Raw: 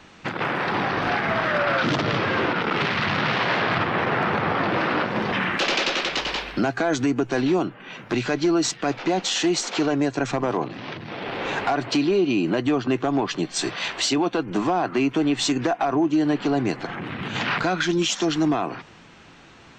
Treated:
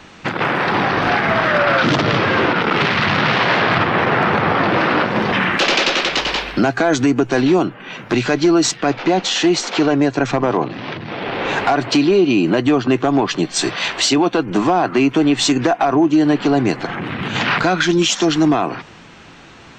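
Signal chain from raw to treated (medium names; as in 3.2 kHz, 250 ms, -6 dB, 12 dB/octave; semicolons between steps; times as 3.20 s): 8.80–11.50 s: Bessel low-pass 5.5 kHz, order 2; trim +7 dB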